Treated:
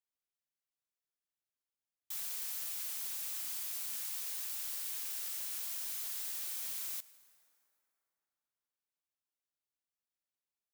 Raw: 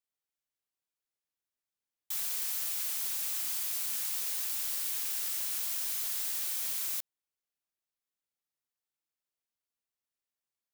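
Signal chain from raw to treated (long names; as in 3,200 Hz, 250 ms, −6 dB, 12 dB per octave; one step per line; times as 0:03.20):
0:04.05–0:06.31: high-pass filter 530 Hz → 140 Hz 24 dB per octave
convolution reverb RT60 3.4 s, pre-delay 83 ms, DRR 18 dB
level −6 dB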